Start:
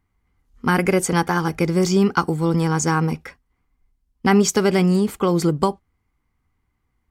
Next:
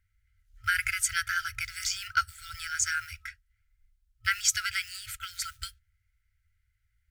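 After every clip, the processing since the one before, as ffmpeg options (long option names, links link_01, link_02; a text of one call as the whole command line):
ffmpeg -i in.wav -af "acrusher=bits=9:mode=log:mix=0:aa=0.000001,afftfilt=real='re*(1-between(b*sr/4096,110,1300))':imag='im*(1-between(b*sr/4096,110,1300))':win_size=4096:overlap=0.75,volume=-2dB" out.wav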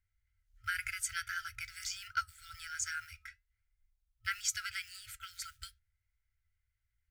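ffmpeg -i in.wav -af "flanger=delay=2.8:depth=2.6:regen=85:speed=0.47:shape=triangular,volume=-4.5dB" out.wav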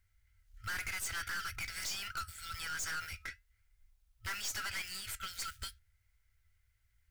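ffmpeg -i in.wav -af "aeval=exprs='(tanh(224*val(0)+0.45)-tanh(0.45))/224':channel_layout=same,volume=10.5dB" out.wav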